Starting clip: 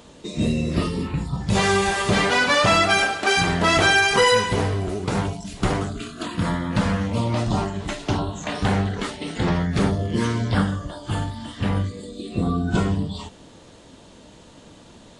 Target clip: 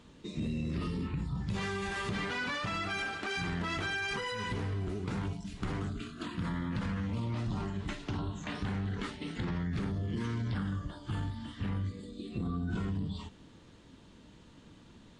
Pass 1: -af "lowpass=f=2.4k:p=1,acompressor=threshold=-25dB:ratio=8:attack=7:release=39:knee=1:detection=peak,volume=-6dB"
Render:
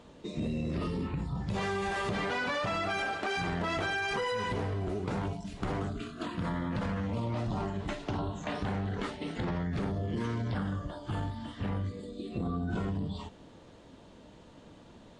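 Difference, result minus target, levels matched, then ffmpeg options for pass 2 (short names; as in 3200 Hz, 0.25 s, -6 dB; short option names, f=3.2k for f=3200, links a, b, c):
500 Hz band +4.5 dB
-af "lowpass=f=2.4k:p=1,acompressor=threshold=-25dB:ratio=8:attack=7:release=39:knee=1:detection=peak,equalizer=f=630:t=o:w=1.2:g=-10.5,volume=-6dB"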